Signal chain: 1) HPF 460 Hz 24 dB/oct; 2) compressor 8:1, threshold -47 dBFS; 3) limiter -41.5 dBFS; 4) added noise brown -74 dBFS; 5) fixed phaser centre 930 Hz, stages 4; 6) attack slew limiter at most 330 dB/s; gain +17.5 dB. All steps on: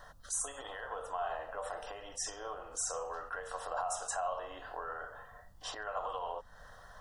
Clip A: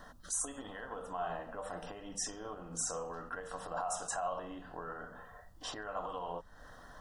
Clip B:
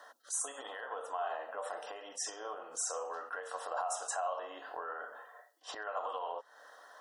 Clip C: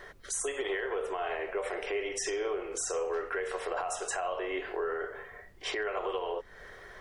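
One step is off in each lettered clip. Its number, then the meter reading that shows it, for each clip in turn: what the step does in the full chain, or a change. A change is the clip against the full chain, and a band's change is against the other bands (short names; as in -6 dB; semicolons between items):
1, 250 Hz band +12.5 dB; 4, momentary loudness spread change +1 LU; 5, 250 Hz band +10.5 dB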